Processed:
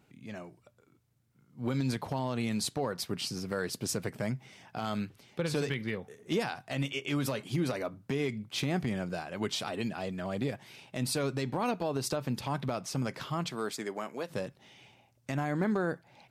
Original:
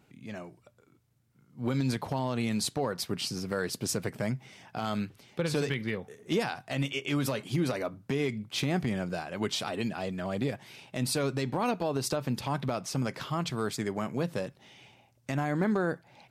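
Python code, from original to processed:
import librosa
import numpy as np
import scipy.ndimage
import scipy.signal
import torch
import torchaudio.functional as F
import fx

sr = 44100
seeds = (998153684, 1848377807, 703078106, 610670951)

y = fx.highpass(x, sr, hz=fx.line((13.46, 190.0), (14.29, 450.0)), slope=12, at=(13.46, 14.29), fade=0.02)
y = F.gain(torch.from_numpy(y), -2.0).numpy()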